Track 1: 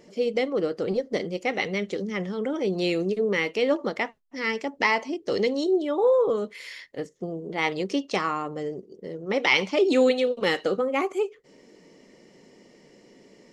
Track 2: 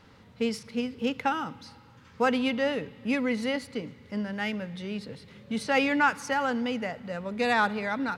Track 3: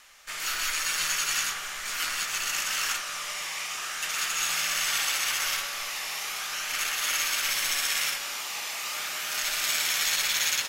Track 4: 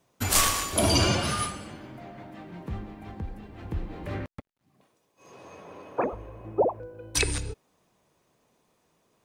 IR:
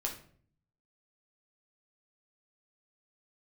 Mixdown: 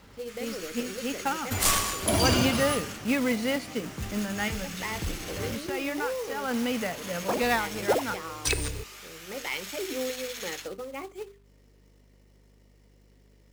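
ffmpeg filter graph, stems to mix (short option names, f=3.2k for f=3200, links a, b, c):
-filter_complex "[0:a]bandreject=f=50:t=h:w=6,bandreject=f=100:t=h:w=6,bandreject=f=150:t=h:w=6,bandreject=f=200:t=h:w=6,bandreject=f=250:t=h:w=6,bandreject=f=300:t=h:w=6,bandreject=f=350:t=h:w=6,bandreject=f=400:t=h:w=6,volume=-13dB,asplit=3[a][b][c];[a]atrim=end=2.37,asetpts=PTS-STARTPTS,afade=t=out:st=2.366:d=0.004:c=hsin[d];[b]atrim=start=2.37:end=4.48,asetpts=PTS-STARTPTS,volume=0[e];[c]atrim=start=4.48,asetpts=PTS-STARTPTS,afade=t=in:d=0.004:c=hsin[f];[d][e][f]concat=n=3:v=0:a=1,asplit=2[g][h];[1:a]volume=1dB[i];[2:a]volume=-13.5dB[j];[3:a]adelay=1300,volume=-2dB[k];[h]apad=whole_len=360566[l];[i][l]sidechaincompress=threshold=-45dB:ratio=8:attack=24:release=183[m];[g][m][j][k]amix=inputs=4:normalize=0,aeval=exprs='val(0)+0.00126*(sin(2*PI*50*n/s)+sin(2*PI*2*50*n/s)/2+sin(2*PI*3*50*n/s)/3+sin(2*PI*4*50*n/s)/4+sin(2*PI*5*50*n/s)/5)':c=same,acrusher=bits=3:mode=log:mix=0:aa=0.000001"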